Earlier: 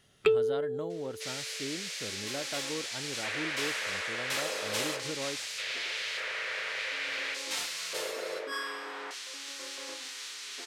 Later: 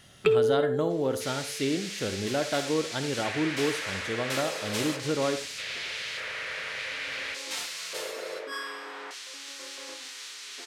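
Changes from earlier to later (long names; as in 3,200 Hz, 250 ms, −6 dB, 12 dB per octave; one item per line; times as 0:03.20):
speech +9.0 dB
reverb: on, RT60 0.30 s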